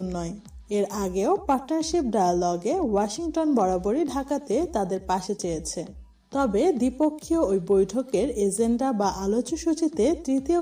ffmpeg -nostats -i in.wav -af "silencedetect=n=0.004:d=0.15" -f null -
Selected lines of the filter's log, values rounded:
silence_start: 6.11
silence_end: 6.32 | silence_duration: 0.21